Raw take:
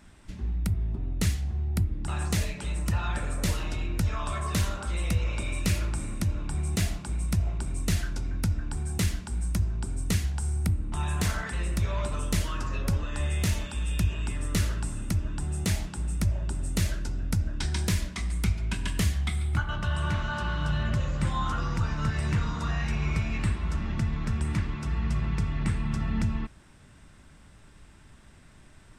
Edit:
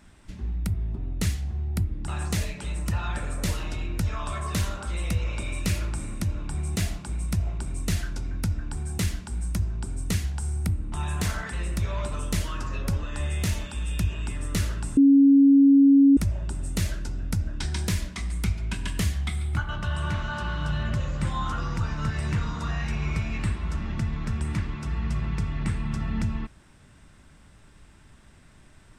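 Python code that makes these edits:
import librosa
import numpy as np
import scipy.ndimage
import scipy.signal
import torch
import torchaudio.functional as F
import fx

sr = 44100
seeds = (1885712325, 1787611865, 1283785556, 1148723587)

y = fx.edit(x, sr, fx.bleep(start_s=14.97, length_s=1.2, hz=277.0, db=-12.0), tone=tone)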